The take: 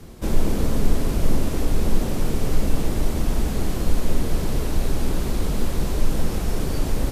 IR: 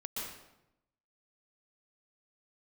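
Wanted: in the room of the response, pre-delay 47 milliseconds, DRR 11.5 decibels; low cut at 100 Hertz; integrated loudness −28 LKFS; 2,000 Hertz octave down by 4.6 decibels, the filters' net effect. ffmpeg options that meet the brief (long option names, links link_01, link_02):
-filter_complex "[0:a]highpass=100,equalizer=frequency=2000:width_type=o:gain=-6,asplit=2[link_01][link_02];[1:a]atrim=start_sample=2205,adelay=47[link_03];[link_02][link_03]afir=irnorm=-1:irlink=0,volume=-12.5dB[link_04];[link_01][link_04]amix=inputs=2:normalize=0,volume=0.5dB"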